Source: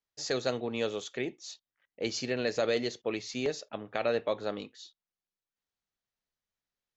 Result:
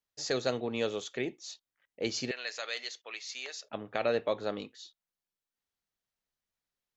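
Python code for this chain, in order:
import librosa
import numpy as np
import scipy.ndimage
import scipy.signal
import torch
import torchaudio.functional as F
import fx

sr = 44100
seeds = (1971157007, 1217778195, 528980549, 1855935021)

y = fx.highpass(x, sr, hz=1300.0, slope=12, at=(2.31, 3.64))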